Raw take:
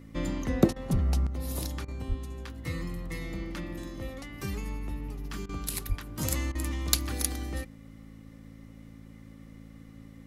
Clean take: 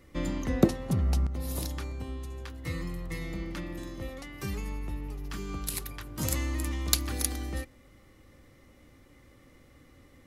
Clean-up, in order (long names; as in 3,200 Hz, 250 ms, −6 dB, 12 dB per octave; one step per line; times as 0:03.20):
hum removal 54.8 Hz, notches 5
high-pass at the plosives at 0:00.92/0:02.08/0:05.88
repair the gap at 0:00.73/0:01.85/0:05.46/0:06.52, 30 ms